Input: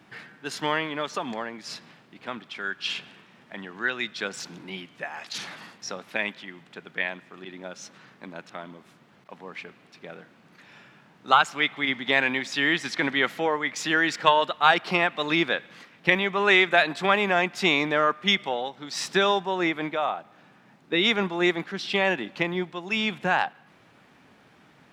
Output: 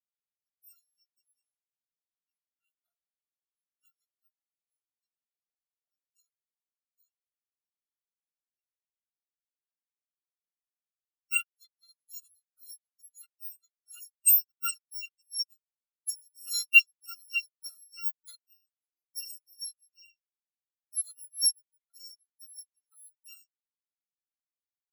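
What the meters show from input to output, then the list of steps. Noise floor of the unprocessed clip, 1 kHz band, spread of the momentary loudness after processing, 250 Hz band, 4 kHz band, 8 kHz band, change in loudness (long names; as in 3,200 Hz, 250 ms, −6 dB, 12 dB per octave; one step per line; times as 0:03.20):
−57 dBFS, −30.5 dB, 25 LU, below −40 dB, −9.0 dB, +7.0 dB, −2.5 dB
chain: samples in bit-reversed order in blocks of 256 samples
every bin expanded away from the loudest bin 4 to 1
level −4 dB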